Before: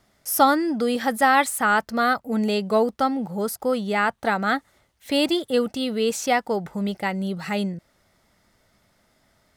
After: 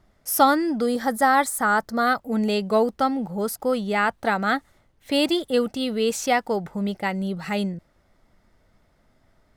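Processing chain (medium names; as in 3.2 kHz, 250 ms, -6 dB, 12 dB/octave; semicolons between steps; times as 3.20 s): 0.86–2.07 s: peaking EQ 2.7 kHz -13.5 dB 0.52 oct; added noise brown -62 dBFS; tape noise reduction on one side only decoder only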